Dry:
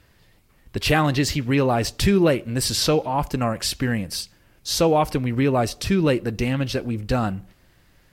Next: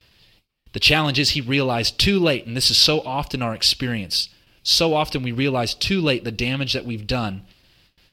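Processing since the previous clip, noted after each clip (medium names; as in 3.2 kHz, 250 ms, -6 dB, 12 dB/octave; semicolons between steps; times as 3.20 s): gate with hold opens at -46 dBFS; high-order bell 3.6 kHz +11.5 dB 1.3 oct; Chebyshev shaper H 7 -37 dB, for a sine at -1 dBFS; trim -1 dB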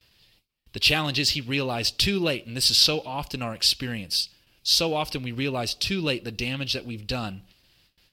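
treble shelf 4.6 kHz +7 dB; trim -7 dB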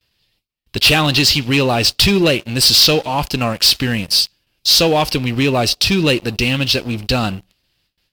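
waveshaping leveller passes 3; trim +1.5 dB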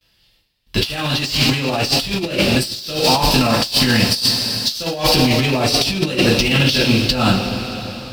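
two-slope reverb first 0.35 s, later 4.2 s, from -18 dB, DRR -6 dB; compressor with a negative ratio -12 dBFS, ratio -0.5; trim -4 dB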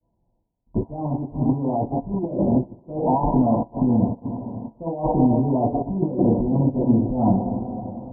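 rippled Chebyshev low-pass 1 kHz, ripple 6 dB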